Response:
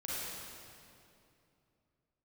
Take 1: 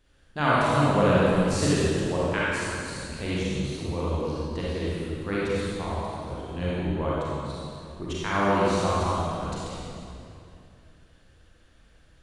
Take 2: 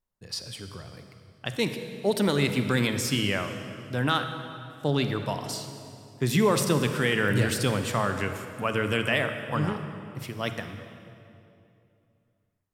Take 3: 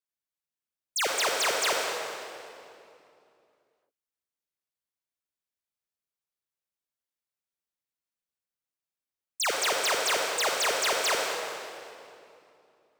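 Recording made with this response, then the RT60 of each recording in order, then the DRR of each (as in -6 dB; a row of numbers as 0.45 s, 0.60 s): 1; 2.7 s, 2.7 s, 2.7 s; -8.5 dB, 7.0 dB, -0.5 dB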